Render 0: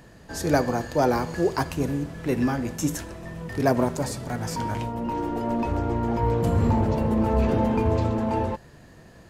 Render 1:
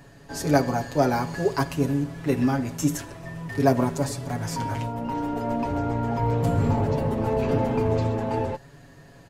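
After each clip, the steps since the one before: comb 7.2 ms, depth 82%; trim -2 dB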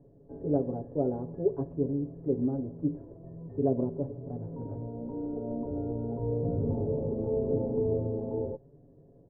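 four-pole ladder low-pass 550 Hz, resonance 45%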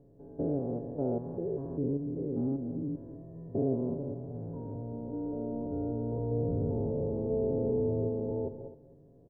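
spectrogram pixelated in time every 200 ms; delay 259 ms -15 dB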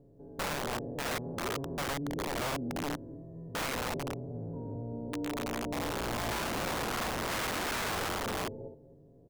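integer overflow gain 29 dB

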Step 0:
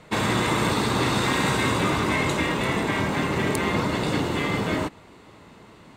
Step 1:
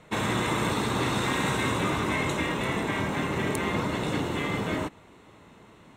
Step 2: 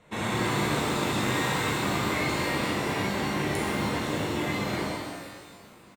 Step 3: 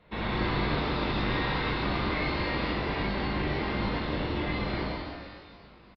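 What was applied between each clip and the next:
band-stop 4.7 kHz, Q 5.1; trim -4 dB
doubling 40 ms -11 dB; pitch-shifted reverb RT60 1.5 s, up +12 st, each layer -8 dB, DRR -4 dB; trim -6.5 dB
octave divider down 2 oct, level -1 dB; resampled via 11.025 kHz; trim -2.5 dB

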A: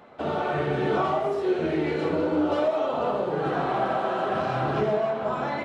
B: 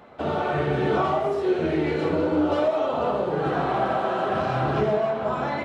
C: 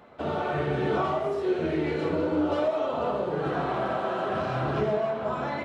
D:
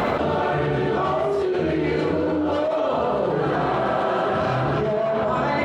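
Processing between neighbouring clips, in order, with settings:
peaking EQ 63 Hz +6.5 dB 1.5 oct; trim +1.5 dB
band-stop 790 Hz, Q 20; trim -3.5 dB
level flattener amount 100%

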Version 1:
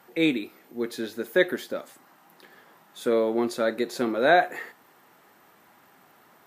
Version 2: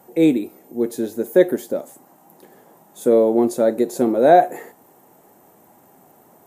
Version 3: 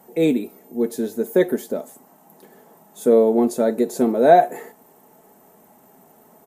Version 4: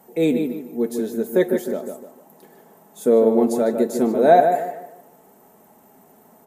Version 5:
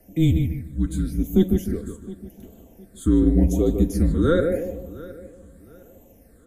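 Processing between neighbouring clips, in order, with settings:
high-order bell 2.4 kHz -14 dB 2.5 oct; trim +8.5 dB
comb 4.6 ms, depth 44%; trim -1 dB
filtered feedback delay 151 ms, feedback 34%, low-pass 2.6 kHz, level -6 dB; trim -1 dB
frequency shift -170 Hz; phase shifter stages 8, 0.88 Hz, lowest notch 710–1600 Hz; filtered feedback delay 712 ms, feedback 30%, low-pass 4.2 kHz, level -19 dB

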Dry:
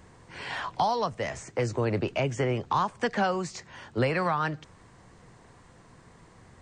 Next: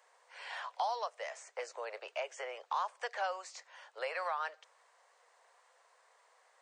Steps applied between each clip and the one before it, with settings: steep high-pass 510 Hz 48 dB/octave; trim -8.5 dB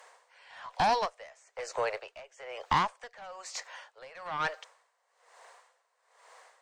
Chebyshev shaper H 2 -8 dB, 5 -16 dB, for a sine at -23.5 dBFS; logarithmic tremolo 1.1 Hz, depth 22 dB; trim +7.5 dB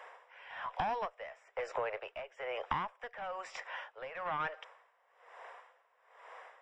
compression 4:1, threshold -39 dBFS, peak gain reduction 15 dB; Savitzky-Golay filter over 25 samples; trim +4.5 dB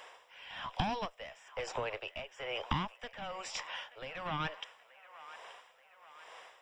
high-order bell 940 Hz -13 dB 2.8 oct; feedback echo behind a band-pass 880 ms, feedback 55%, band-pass 1.4 kHz, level -13.5 dB; trim +11 dB

